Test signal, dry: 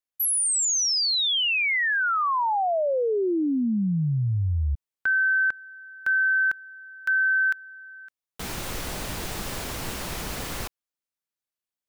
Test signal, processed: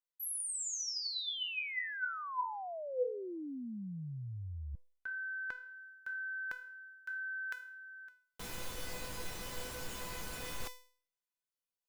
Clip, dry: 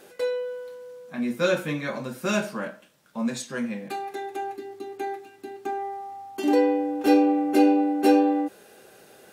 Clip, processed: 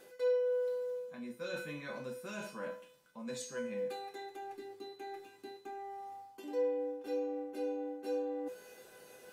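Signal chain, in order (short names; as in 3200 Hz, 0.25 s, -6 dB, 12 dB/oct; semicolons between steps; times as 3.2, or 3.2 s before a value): reverse; compressor 4:1, threshold -35 dBFS; reverse; resonator 500 Hz, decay 0.46 s, mix 90%; gain +10.5 dB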